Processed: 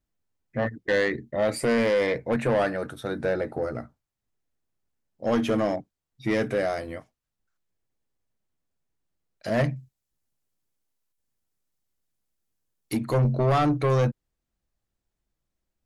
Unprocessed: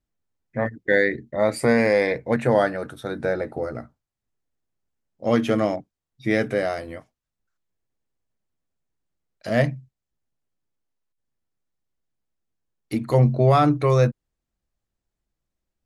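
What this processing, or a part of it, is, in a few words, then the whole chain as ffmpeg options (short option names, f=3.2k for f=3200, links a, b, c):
saturation between pre-emphasis and de-emphasis: -filter_complex "[0:a]asettb=1/sr,asplit=3[a][b][c];[a]atrim=end=9.764[d];[b]atrim=start=9.76:end=12.97,asetpts=PTS-STARTPTS,afade=t=in:d=0.004:c=qsin,afade=t=out:st=3.206:d=0.004:c=qsin,aemphasis=mode=production:type=cd[e];[c]atrim=start=12.966[f];[d][e]acrossfade=d=0.004:c1=hsin:c2=qsin[g];[g][f]acrossfade=d=0.004:c1=qsin:c2=hsin,highshelf=f=7.4k:g=12,asoftclip=type=tanh:threshold=-17dB,highshelf=f=7.4k:g=-12"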